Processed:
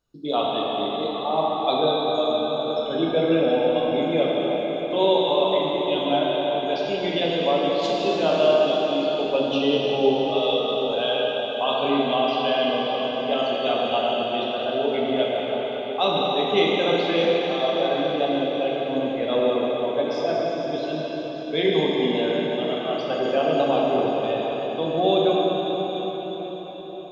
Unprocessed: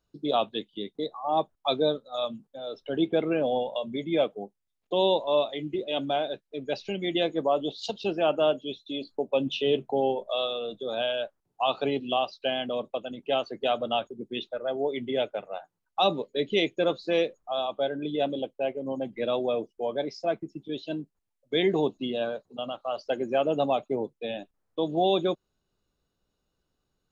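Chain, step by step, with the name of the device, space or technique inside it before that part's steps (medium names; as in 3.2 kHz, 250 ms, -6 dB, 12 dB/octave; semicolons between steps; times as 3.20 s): cathedral (reverberation RT60 5.7 s, pre-delay 6 ms, DRR -5.5 dB)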